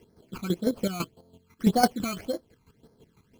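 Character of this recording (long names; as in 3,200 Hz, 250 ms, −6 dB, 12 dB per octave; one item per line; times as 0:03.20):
aliases and images of a low sample rate 3,700 Hz, jitter 0%
phaser sweep stages 12, 1.8 Hz, lowest notch 530–2,800 Hz
chopped level 6 Hz, depth 65%, duty 25%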